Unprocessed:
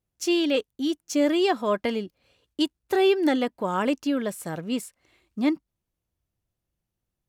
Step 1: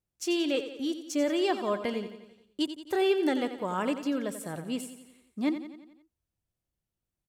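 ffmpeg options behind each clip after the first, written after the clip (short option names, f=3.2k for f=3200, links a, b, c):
-filter_complex "[0:a]equalizer=f=8.4k:w=4:g=4,asplit=2[a][b];[b]aecho=0:1:88|176|264|352|440|528:0.282|0.155|0.0853|0.0469|0.0258|0.0142[c];[a][c]amix=inputs=2:normalize=0,volume=-5.5dB"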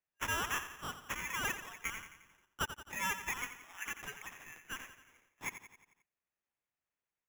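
-af "afftfilt=real='re*between(b*sr/4096,1700,7200)':imag='im*between(b*sr/4096,1700,7200)':win_size=4096:overlap=0.75,acrusher=samples=10:mix=1:aa=0.000001,volume=1.5dB"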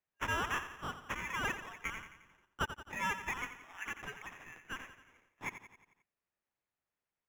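-af "lowpass=f=2.1k:p=1,volume=3dB"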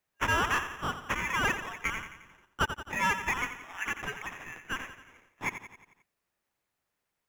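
-af "asoftclip=type=tanh:threshold=-24dB,volume=8.5dB"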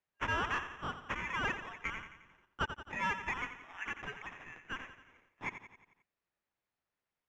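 -af "lowpass=4.3k,volume=-6.5dB"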